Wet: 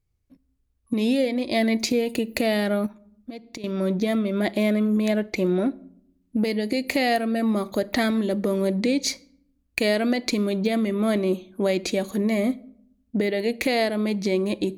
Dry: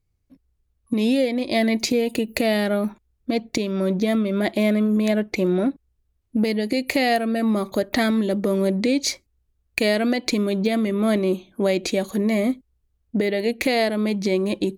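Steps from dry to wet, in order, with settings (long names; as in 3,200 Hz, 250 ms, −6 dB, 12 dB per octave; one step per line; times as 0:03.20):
on a send at −20 dB: convolution reverb RT60 0.70 s, pre-delay 16 ms
0:02.86–0:03.64: on the sum: downward compressor 12 to 1, threshold −32 dBFS, peak gain reduction 15 dB
level −2 dB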